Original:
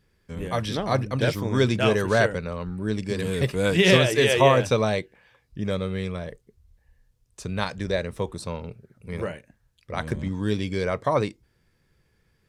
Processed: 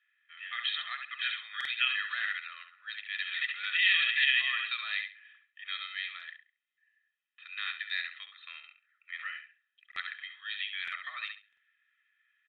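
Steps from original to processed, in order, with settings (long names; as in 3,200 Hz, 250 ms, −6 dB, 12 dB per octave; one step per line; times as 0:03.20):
repeating echo 68 ms, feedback 22%, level −9 dB
brickwall limiter −15 dBFS, peak gain reduction 10 dB
comb filter 1.6 ms, depth 88%
downsampling to 8,000 Hz
elliptic high-pass filter 1,600 Hz, stop band 80 dB
low-pass that shuts in the quiet parts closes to 2,400 Hz, open at −32 dBFS
buffer that repeats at 0:01.56/0:09.87/0:10.83/0:11.48, samples 2,048, times 1
level +2 dB
AAC 64 kbit/s 24,000 Hz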